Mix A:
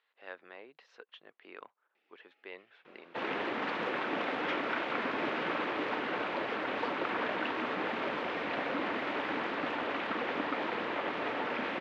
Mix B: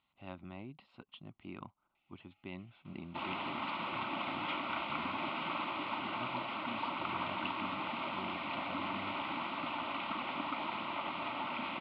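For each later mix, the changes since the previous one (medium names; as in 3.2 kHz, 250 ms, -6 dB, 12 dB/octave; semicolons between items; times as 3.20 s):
speech: remove high-pass 790 Hz 12 dB/octave; first sound: add band-stop 750 Hz, Q 12; master: add static phaser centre 1.7 kHz, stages 6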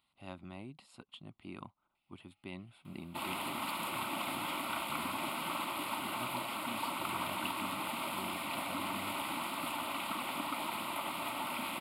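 second sound -5.0 dB; master: remove low-pass 3.4 kHz 24 dB/octave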